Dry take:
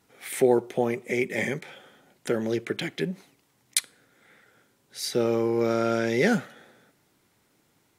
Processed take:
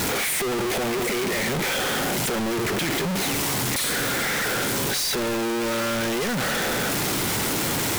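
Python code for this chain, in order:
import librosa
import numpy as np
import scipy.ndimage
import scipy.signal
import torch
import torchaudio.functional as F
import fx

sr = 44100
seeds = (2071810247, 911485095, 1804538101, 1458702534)

y = np.sign(x) * np.sqrt(np.mean(np.square(x)))
y = y * librosa.db_to_amplitude(4.0)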